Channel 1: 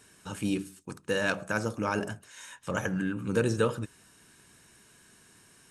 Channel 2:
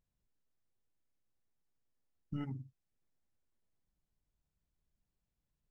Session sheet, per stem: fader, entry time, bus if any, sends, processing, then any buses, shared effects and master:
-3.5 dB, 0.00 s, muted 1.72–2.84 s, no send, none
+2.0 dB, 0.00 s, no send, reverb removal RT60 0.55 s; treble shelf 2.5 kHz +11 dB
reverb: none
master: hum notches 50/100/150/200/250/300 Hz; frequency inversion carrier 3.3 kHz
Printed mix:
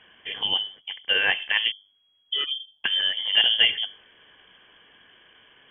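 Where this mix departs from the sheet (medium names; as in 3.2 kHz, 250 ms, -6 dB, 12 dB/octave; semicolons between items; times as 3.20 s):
stem 1 -3.5 dB -> +6.5 dB; stem 2 +2.0 dB -> +13.5 dB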